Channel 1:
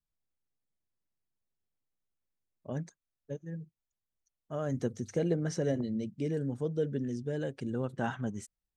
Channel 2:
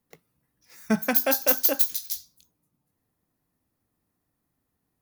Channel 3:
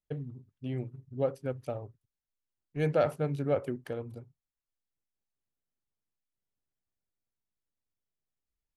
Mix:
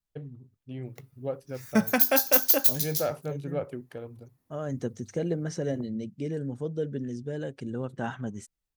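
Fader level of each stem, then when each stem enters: +0.5, +0.5, −3.0 decibels; 0.00, 0.85, 0.05 seconds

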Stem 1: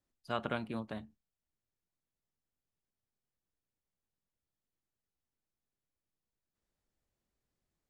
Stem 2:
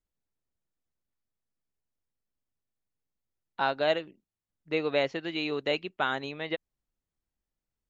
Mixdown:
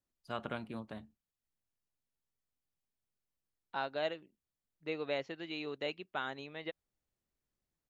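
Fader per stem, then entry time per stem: −4.0, −9.5 decibels; 0.00, 0.15 seconds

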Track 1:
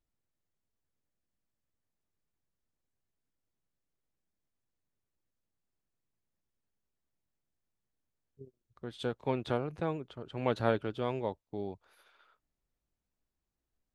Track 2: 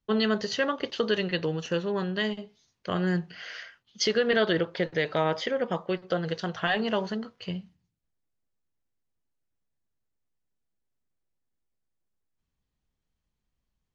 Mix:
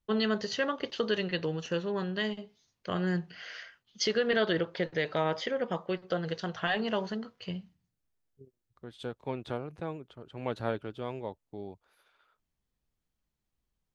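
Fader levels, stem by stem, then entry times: −3.5, −3.5 decibels; 0.00, 0.00 seconds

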